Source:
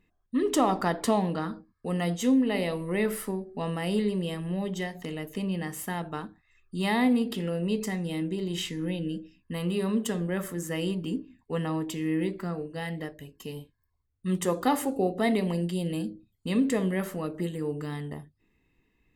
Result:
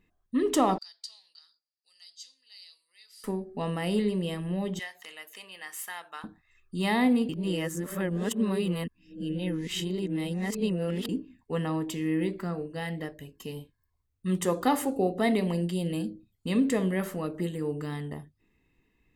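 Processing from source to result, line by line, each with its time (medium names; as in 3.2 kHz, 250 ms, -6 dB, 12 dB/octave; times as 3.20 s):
0.78–3.24 s: ladder band-pass 4.9 kHz, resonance 80%
4.79–6.24 s: high-pass 1.2 kHz
7.29–11.09 s: reverse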